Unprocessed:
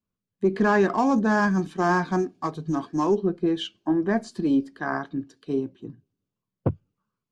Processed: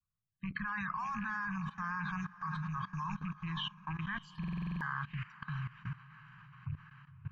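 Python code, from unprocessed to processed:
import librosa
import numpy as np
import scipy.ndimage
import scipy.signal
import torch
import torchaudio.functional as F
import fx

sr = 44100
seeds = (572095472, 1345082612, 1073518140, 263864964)

p1 = fx.rattle_buzz(x, sr, strikes_db=-27.0, level_db=-33.0)
p2 = fx.spec_paint(p1, sr, seeds[0], shape='fall', start_s=4.62, length_s=0.32, low_hz=430.0, high_hz=3200.0, level_db=-33.0)
p3 = scipy.signal.sosfilt(scipy.signal.ellip(3, 1.0, 40, [150.0, 1100.0], 'bandstop', fs=sr, output='sos'), p2)
p4 = fx.spec_topn(p3, sr, count=64)
p5 = fx.over_compress(p4, sr, threshold_db=-33.0, ratio=-1.0)
p6 = p4 + (p5 * 10.0 ** (0.0 / 20.0))
p7 = fx.bass_treble(p6, sr, bass_db=2, treble_db=-15)
p8 = p7 + fx.echo_diffused(p7, sr, ms=565, feedback_pct=48, wet_db=-12.0, dry=0)
p9 = fx.level_steps(p8, sr, step_db=18)
p10 = fx.buffer_glitch(p9, sr, at_s=(4.39,), block=2048, repeats=8)
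y = p10 * 10.0 ** (-1.5 / 20.0)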